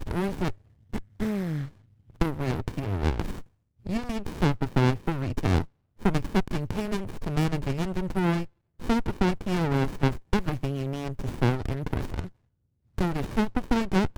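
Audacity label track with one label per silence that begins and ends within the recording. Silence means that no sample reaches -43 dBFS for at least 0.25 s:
0.550000	0.940000	silence
1.700000	2.100000	silence
3.440000	3.860000	silence
5.660000	6.000000	silence
8.470000	8.800000	silence
12.290000	12.980000	silence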